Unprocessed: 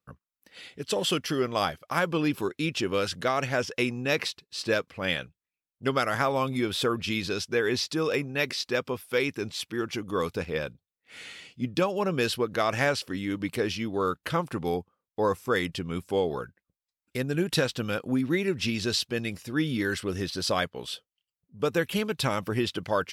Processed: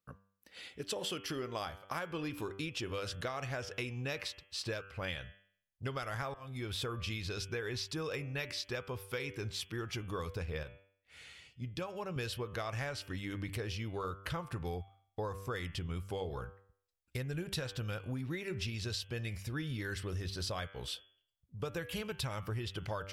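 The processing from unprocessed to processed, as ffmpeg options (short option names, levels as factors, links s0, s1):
-filter_complex "[0:a]asplit=4[s0][s1][s2][s3];[s0]atrim=end=6.34,asetpts=PTS-STARTPTS,afade=t=out:st=6.336:d=0.004:c=hsin[s4];[s1]atrim=start=6.34:end=10.632,asetpts=PTS-STARTPTS,afade=t=in:d=0.58[s5];[s2]atrim=start=10.628:end=12.162,asetpts=PTS-STARTPTS,volume=0.473[s6];[s3]atrim=start=12.158[s7];[s4][s5]concat=n=2:v=0:a=1[s8];[s8][s6]acrossfade=d=0.004:c1=hsin:c2=hsin[s9];[s9][s7]acrossfade=d=0.004:c1=hsin:c2=hsin,bandreject=f=97.74:t=h:w=4,bandreject=f=195.48:t=h:w=4,bandreject=f=293.22:t=h:w=4,bandreject=f=390.96:t=h:w=4,bandreject=f=488.7:t=h:w=4,bandreject=f=586.44:t=h:w=4,bandreject=f=684.18:t=h:w=4,bandreject=f=781.92:t=h:w=4,bandreject=f=879.66:t=h:w=4,bandreject=f=977.4:t=h:w=4,bandreject=f=1075.14:t=h:w=4,bandreject=f=1172.88:t=h:w=4,bandreject=f=1270.62:t=h:w=4,bandreject=f=1368.36:t=h:w=4,bandreject=f=1466.1:t=h:w=4,bandreject=f=1563.84:t=h:w=4,bandreject=f=1661.58:t=h:w=4,bandreject=f=1759.32:t=h:w=4,bandreject=f=1857.06:t=h:w=4,bandreject=f=1954.8:t=h:w=4,bandreject=f=2052.54:t=h:w=4,bandreject=f=2150.28:t=h:w=4,bandreject=f=2248.02:t=h:w=4,bandreject=f=2345.76:t=h:w=4,bandreject=f=2443.5:t=h:w=4,bandreject=f=2541.24:t=h:w=4,bandreject=f=2638.98:t=h:w=4,bandreject=f=2736.72:t=h:w=4,bandreject=f=2834.46:t=h:w=4,bandreject=f=2932.2:t=h:w=4,bandreject=f=3029.94:t=h:w=4,bandreject=f=3127.68:t=h:w=4,bandreject=f=3225.42:t=h:w=4,bandreject=f=3323.16:t=h:w=4,bandreject=f=3420.9:t=h:w=4,asubboost=boost=12:cutoff=68,acompressor=threshold=0.0251:ratio=6,volume=0.668"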